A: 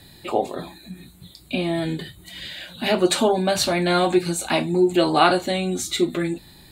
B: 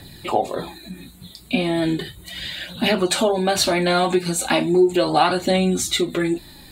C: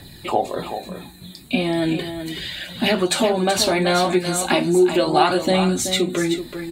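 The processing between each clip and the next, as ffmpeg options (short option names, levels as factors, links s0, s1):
-af "acompressor=threshold=0.1:ratio=2.5,aphaser=in_gain=1:out_gain=1:delay=4.8:decay=0.36:speed=0.36:type=triangular,volume=1.58"
-af "aecho=1:1:379:0.355"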